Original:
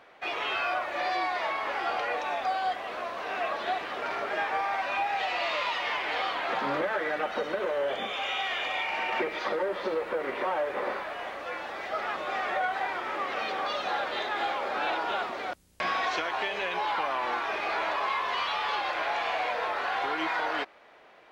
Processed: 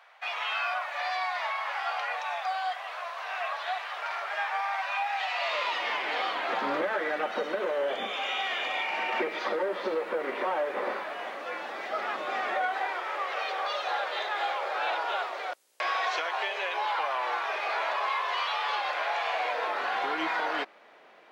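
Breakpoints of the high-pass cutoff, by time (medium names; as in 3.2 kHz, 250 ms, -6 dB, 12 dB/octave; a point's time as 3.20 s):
high-pass 24 dB/octave
5.33 s 720 Hz
5.87 s 190 Hz
12.45 s 190 Hz
13.08 s 450 Hz
19.29 s 450 Hz
19.92 s 160 Hz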